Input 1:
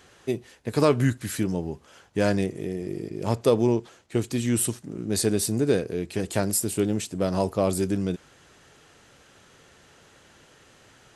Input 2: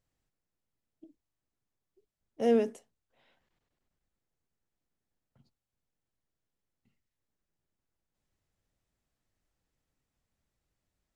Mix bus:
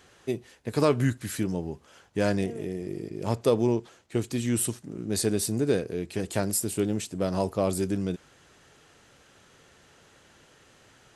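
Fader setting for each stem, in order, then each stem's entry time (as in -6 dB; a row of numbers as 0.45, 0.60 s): -2.5, -15.0 dB; 0.00, 0.00 s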